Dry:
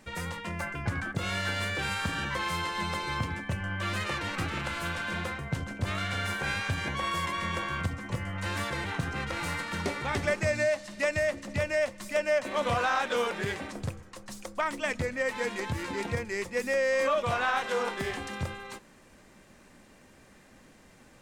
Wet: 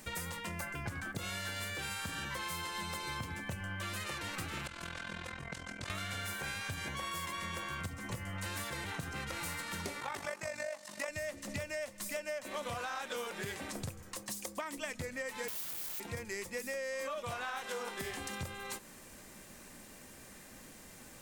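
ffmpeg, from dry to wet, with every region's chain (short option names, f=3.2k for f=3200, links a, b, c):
-filter_complex "[0:a]asettb=1/sr,asplit=3[a][b][c];[a]atrim=end=4.674[d];[b]atrim=start=4.67:end=5.9,asetpts=PTS-STARTPTS,afade=t=in:d=0.004:c=qsin,afade=t=out:st=1.226:d=0.004:c=qsin,lowpass=6.8k,acrossover=split=330|1000[e][f][g];[e]acompressor=threshold=-43dB:ratio=4[h];[f]acompressor=threshold=-48dB:ratio=4[i];[g]acompressor=threshold=-41dB:ratio=4[j];[h][i][j]amix=inputs=3:normalize=0,tremolo=f=42:d=0.824[k];[c]atrim=start=5.896[l];[d][k]acrossfade=d=0.004:c1=hsin:c2=qsin[m];[m][l]acrossfade=d=0.004:c1=qsin:c2=hsin,asettb=1/sr,asplit=3[n][o][p];[n]atrim=end=10.004[q];[o]atrim=start=10:end=11.09,asetpts=PTS-STARTPTS,afade=t=in:d=0.004:c=qsin,afade=t=out:st=1.086:d=0.004:c=qsin,highpass=f=270:p=1,equalizer=f=960:t=o:w=1.1:g=8.5,tremolo=f=48:d=0.71[r];[p]atrim=start=11.086[s];[q][r]acrossfade=d=0.004:c1=hsin:c2=qsin[t];[t][s]acrossfade=d=0.004:c1=qsin:c2=hsin,asettb=1/sr,asplit=3[u][v][w];[u]atrim=end=14.174[x];[v]atrim=start=14.17:end=14.77,asetpts=PTS-STARTPTS,afade=t=in:d=0.004:c=qsin,afade=t=out:st=0.596:d=0.004:c=qsin,highpass=f=85:p=1,equalizer=f=290:t=o:w=0.28:g=6,bandreject=f=1.4k:w=8.1[y];[w]atrim=start=14.766[z];[x][y]acrossfade=d=0.004:c1=hsin:c2=qsin[aa];[aa][z]acrossfade=d=0.004:c1=qsin:c2=hsin,asettb=1/sr,asplit=3[ab][ac][ad];[ab]atrim=end=15.484[ae];[ac]atrim=start=15.48:end=16,asetpts=PTS-STARTPTS,afade=t=in:d=0.004:c=qsin,afade=t=out:st=0.516:d=0.004:c=qsin,highpass=190,equalizer=f=1k:w=6.7:g=9,aeval=exprs='(mod(47.3*val(0)+1,2)-1)/47.3':c=same[af];[ad]atrim=start=15.996[ag];[ae][af]acrossfade=d=0.004:c1=hsin:c2=qsin[ah];[ah][ag]acrossfade=d=0.004:c1=qsin:c2=hsin,aemphasis=mode=production:type=50fm,acompressor=threshold=-39dB:ratio=5,volume=1dB"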